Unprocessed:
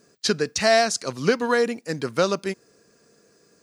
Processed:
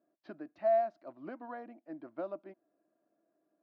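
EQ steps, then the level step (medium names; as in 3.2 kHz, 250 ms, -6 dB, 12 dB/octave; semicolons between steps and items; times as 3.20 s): two resonant band-passes 450 Hz, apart 1 oct; distance through air 360 m; bass shelf 490 Hz -10.5 dB; -1.5 dB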